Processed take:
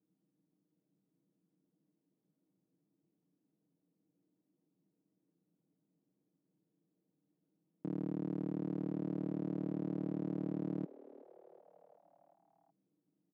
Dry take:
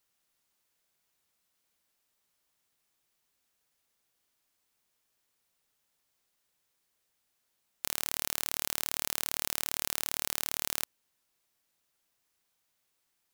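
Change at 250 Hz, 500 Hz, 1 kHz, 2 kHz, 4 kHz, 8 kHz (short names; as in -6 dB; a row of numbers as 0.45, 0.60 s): +16.5 dB, +4.5 dB, -12.0 dB, under -25 dB, under -35 dB, under -40 dB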